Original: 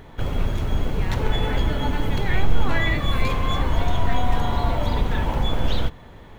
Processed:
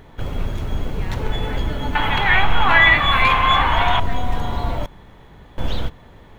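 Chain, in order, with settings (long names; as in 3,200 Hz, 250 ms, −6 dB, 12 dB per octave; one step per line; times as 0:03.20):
0:01.95–0:04.00: flat-topped bell 1,600 Hz +15 dB 2.6 octaves
0:04.86–0:05.58: fill with room tone
level −1 dB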